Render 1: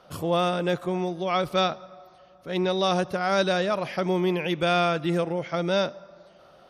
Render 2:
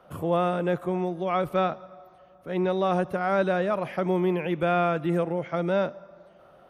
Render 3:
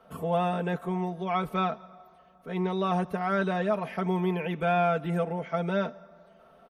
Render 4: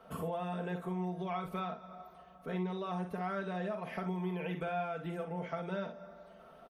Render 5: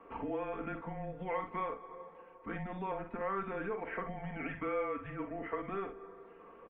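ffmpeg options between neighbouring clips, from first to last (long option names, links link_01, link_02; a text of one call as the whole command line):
ffmpeg -i in.wav -filter_complex "[0:a]equalizer=frequency=4900:width_type=o:width=1.2:gain=-14.5,acrossover=split=220|3000[link_01][link_02][link_03];[link_03]alimiter=level_in=19.5dB:limit=-24dB:level=0:latency=1:release=21,volume=-19.5dB[link_04];[link_01][link_02][link_04]amix=inputs=3:normalize=0" out.wav
ffmpeg -i in.wav -af "aecho=1:1:4.5:0.77,volume=-3.5dB" out.wav
ffmpeg -i in.wav -filter_complex "[0:a]acompressor=threshold=-36dB:ratio=6,asplit=2[link_01][link_02];[link_02]aecho=0:1:44|61:0.355|0.299[link_03];[link_01][link_03]amix=inputs=2:normalize=0" out.wav
ffmpeg -i in.wav -af "aemphasis=mode=production:type=riaa,highpass=frequency=220:width_type=q:width=0.5412,highpass=frequency=220:width_type=q:width=1.307,lowpass=frequency=2500:width_type=q:width=0.5176,lowpass=frequency=2500:width_type=q:width=0.7071,lowpass=frequency=2500:width_type=q:width=1.932,afreqshift=-200,volume=2.5dB" out.wav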